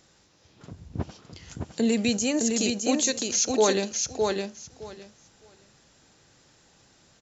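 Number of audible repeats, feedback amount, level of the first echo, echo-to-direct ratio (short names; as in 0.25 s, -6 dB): 2, 16%, -4.0 dB, -4.0 dB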